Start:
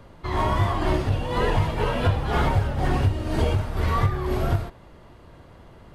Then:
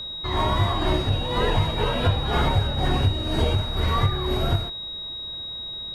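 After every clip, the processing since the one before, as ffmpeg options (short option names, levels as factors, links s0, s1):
-af "aeval=exprs='val(0)+0.0282*sin(2*PI*3800*n/s)':c=same"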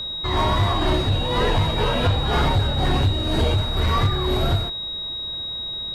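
-af "aeval=exprs='0.355*(cos(1*acos(clip(val(0)/0.355,-1,1)))-cos(1*PI/2))+0.0447*(cos(5*acos(clip(val(0)/0.355,-1,1)))-cos(5*PI/2))':c=same"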